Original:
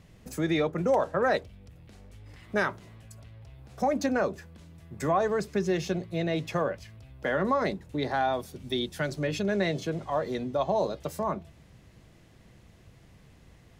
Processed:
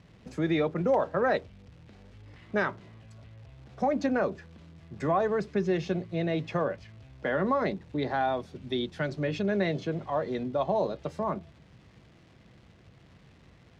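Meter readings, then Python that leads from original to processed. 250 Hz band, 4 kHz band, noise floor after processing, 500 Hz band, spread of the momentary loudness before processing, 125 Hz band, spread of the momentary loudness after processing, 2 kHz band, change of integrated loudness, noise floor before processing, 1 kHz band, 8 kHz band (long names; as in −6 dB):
+0.5 dB, −4.0 dB, −57 dBFS, −0.5 dB, 8 LU, 0.0 dB, 7 LU, −1.5 dB, −0.5 dB, −56 dBFS, −1.0 dB, below −10 dB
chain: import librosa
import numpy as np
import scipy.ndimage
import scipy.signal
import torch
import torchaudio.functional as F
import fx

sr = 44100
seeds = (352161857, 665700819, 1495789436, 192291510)

y = fx.highpass(x, sr, hz=110.0, slope=6)
y = fx.low_shelf(y, sr, hz=350.0, db=4.0)
y = fx.dmg_crackle(y, sr, seeds[0], per_s=420.0, level_db=-46.0)
y = scipy.signal.sosfilt(scipy.signal.butter(2, 4000.0, 'lowpass', fs=sr, output='sos'), y)
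y = y * librosa.db_to_amplitude(-1.5)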